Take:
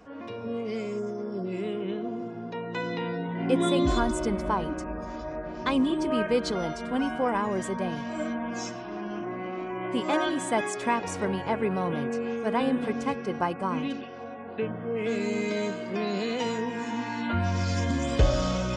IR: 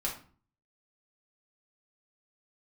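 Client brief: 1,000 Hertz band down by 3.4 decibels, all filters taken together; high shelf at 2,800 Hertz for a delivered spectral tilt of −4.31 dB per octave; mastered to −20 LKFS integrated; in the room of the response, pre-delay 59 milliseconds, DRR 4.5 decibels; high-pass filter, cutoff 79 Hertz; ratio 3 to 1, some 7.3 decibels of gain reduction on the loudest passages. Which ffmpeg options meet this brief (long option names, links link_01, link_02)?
-filter_complex "[0:a]highpass=79,equalizer=frequency=1000:width_type=o:gain=-5.5,highshelf=frequency=2800:gain=8.5,acompressor=threshold=-29dB:ratio=3,asplit=2[link_01][link_02];[1:a]atrim=start_sample=2205,adelay=59[link_03];[link_02][link_03]afir=irnorm=-1:irlink=0,volume=-8.5dB[link_04];[link_01][link_04]amix=inputs=2:normalize=0,volume=12dB"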